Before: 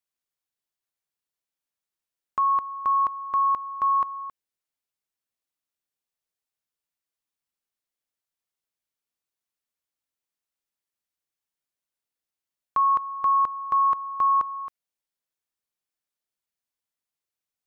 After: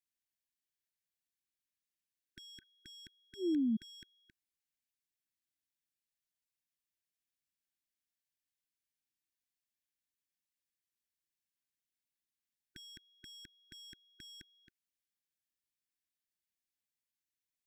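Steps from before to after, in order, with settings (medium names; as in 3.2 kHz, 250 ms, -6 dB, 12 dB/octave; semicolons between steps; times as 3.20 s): in parallel at -3.5 dB: saturation -30.5 dBFS, distortion -6 dB; on the sum: painted sound fall, 2.62–3.77 s, 210–1400 Hz -22 dBFS; brick-wall FIR band-stop 370–1500 Hz; trim -9 dB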